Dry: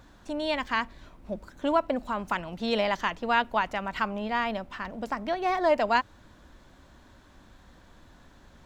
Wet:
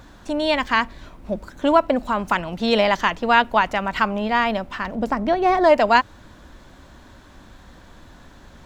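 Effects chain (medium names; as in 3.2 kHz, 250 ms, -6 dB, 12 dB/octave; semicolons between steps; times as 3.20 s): 4.95–5.64 s: tilt shelf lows +4.5 dB, about 830 Hz; trim +8.5 dB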